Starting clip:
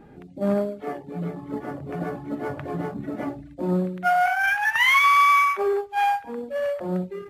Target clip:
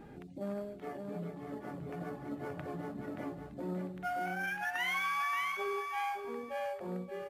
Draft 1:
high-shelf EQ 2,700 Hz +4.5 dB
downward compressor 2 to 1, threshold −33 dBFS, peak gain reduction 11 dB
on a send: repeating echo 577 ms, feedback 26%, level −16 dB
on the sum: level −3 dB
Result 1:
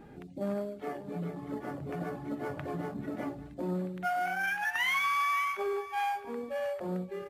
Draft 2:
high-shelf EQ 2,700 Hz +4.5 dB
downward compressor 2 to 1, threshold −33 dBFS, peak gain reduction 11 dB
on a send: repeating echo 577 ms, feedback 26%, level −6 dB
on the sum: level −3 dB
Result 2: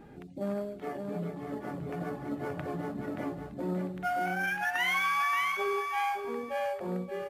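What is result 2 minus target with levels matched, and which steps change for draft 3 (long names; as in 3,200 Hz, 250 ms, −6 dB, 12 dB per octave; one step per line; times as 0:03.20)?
downward compressor: peak gain reduction −5 dB
change: downward compressor 2 to 1, threshold −43.5 dBFS, peak gain reduction 16 dB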